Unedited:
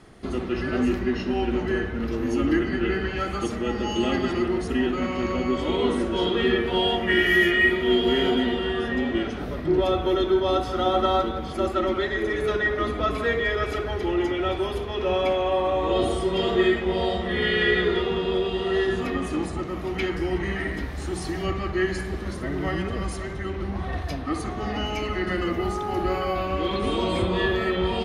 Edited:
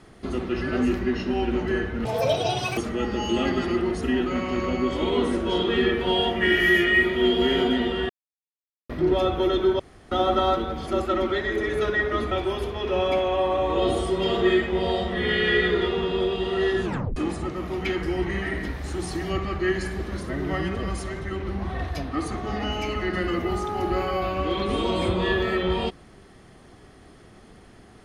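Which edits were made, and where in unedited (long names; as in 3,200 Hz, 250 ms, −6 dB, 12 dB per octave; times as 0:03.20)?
0:02.05–0:03.44: play speed 192%
0:08.76–0:09.56: silence
0:10.46–0:10.78: fill with room tone
0:12.98–0:14.45: remove
0:18.98: tape stop 0.32 s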